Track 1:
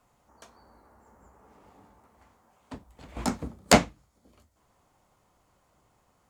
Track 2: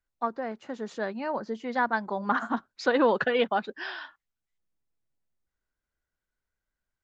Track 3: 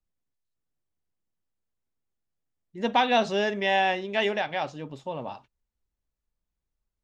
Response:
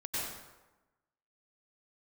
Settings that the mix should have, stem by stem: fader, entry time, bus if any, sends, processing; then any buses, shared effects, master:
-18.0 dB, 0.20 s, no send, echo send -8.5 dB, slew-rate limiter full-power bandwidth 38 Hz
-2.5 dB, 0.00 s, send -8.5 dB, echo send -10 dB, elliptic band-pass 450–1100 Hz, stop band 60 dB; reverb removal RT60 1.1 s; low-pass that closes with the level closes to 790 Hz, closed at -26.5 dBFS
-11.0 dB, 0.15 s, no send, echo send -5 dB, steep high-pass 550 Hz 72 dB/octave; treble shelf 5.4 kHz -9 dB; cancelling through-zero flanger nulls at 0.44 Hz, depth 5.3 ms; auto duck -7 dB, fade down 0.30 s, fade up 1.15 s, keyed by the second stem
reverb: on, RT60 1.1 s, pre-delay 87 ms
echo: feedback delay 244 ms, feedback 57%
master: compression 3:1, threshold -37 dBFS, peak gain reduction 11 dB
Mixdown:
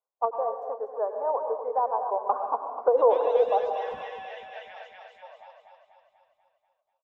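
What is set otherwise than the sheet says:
stem 1 -18.0 dB -> -28.5 dB; stem 2 -2.5 dB -> +4.5 dB; master: missing compression 3:1, threshold -37 dBFS, peak gain reduction 11 dB

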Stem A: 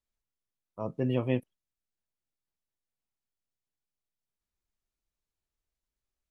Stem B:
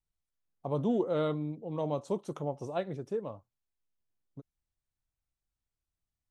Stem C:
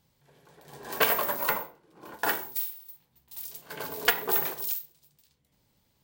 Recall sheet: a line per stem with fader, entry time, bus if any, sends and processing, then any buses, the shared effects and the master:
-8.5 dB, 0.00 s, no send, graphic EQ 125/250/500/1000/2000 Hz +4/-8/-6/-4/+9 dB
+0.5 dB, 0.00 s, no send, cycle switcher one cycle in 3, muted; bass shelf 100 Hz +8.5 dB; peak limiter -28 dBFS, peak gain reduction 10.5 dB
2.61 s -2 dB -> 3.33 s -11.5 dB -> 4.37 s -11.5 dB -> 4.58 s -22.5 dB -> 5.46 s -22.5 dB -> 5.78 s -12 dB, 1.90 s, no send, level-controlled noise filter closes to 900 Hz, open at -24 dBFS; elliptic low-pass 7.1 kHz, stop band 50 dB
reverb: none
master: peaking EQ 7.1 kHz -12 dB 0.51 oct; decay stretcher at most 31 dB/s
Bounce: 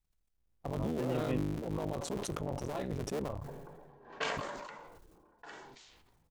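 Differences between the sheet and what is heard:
stem A: missing graphic EQ 125/250/500/1000/2000 Hz +4/-8/-6/-4/+9 dB; stem C: entry 1.90 s -> 3.20 s; master: missing peaking EQ 7.1 kHz -12 dB 0.51 oct

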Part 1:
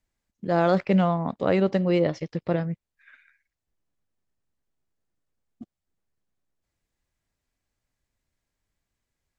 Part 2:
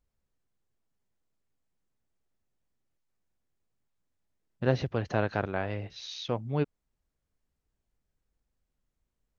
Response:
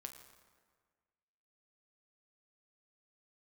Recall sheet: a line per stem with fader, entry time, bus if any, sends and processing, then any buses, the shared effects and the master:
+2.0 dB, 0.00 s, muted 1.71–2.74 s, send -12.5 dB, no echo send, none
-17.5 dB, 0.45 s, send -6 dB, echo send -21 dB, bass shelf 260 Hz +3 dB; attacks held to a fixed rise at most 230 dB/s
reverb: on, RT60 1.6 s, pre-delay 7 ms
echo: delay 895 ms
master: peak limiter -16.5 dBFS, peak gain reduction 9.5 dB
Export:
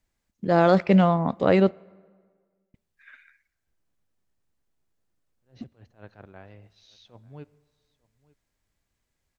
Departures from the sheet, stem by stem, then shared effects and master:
stem 2: entry 0.45 s -> 0.80 s; master: missing peak limiter -16.5 dBFS, peak gain reduction 9.5 dB

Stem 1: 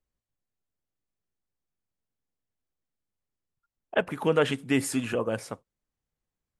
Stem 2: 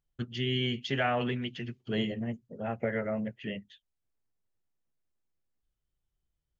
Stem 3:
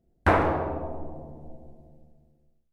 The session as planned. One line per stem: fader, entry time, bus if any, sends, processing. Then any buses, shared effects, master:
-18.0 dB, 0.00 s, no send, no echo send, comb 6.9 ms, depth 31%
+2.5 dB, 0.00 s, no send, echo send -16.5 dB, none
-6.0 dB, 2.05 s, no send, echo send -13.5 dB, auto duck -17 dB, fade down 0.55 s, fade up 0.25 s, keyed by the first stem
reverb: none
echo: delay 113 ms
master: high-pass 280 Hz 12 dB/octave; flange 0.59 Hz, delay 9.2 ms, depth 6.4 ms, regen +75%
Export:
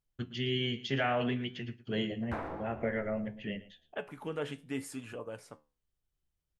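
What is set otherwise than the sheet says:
stem 1 -18.0 dB -> -9.5 dB; stem 3 -6.0 dB -> -13.5 dB; master: missing high-pass 280 Hz 12 dB/octave

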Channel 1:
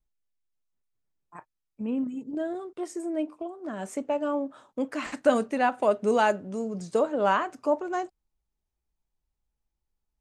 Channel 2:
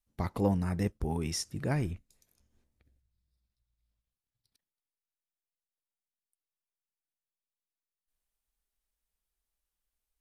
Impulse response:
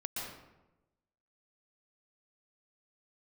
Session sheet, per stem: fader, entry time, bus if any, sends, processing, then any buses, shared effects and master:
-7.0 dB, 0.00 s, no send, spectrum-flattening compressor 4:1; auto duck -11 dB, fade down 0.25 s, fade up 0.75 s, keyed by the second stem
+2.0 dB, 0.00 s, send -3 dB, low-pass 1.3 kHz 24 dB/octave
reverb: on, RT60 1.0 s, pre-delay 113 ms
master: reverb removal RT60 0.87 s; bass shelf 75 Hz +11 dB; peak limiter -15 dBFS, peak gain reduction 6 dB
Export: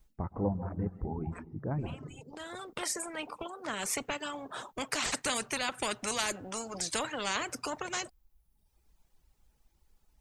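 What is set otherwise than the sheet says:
stem 2 +2.0 dB -> -6.0 dB; master: missing bass shelf 75 Hz +11 dB

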